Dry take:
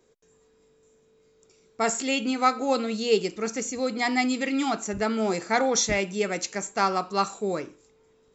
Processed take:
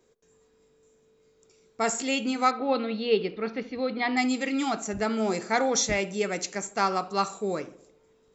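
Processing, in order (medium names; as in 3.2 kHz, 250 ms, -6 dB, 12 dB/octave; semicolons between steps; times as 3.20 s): 2.51–4.17 s: steep low-pass 4.2 kHz 48 dB/octave; tape echo 70 ms, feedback 66%, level -16 dB, low-pass 1.1 kHz; trim -1.5 dB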